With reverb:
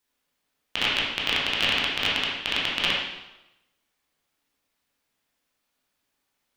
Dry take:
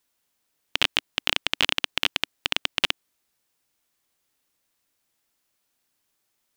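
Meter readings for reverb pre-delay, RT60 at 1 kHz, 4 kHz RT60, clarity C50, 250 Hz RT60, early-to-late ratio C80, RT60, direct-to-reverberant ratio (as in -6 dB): 8 ms, 0.95 s, 0.85 s, 0.5 dB, 0.90 s, 4.0 dB, 1.0 s, -6.0 dB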